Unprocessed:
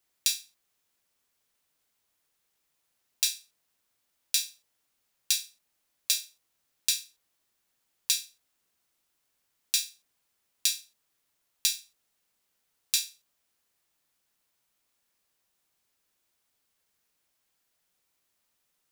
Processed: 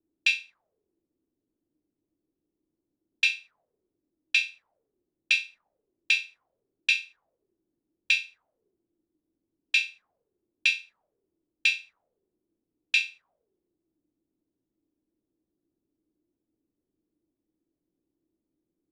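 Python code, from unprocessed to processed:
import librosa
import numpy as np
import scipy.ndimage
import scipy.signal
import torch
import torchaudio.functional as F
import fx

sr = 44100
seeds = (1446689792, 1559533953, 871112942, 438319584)

y = fx.envelope_lowpass(x, sr, base_hz=310.0, top_hz=2600.0, q=7.4, full_db=-32.5, direction='up')
y = F.gain(torch.from_numpy(y), 3.0).numpy()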